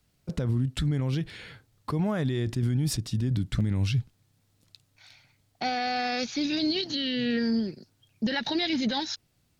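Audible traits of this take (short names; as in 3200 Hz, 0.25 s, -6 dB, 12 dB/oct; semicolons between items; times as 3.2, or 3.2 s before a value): noise floor -70 dBFS; spectral tilt -5.0 dB/oct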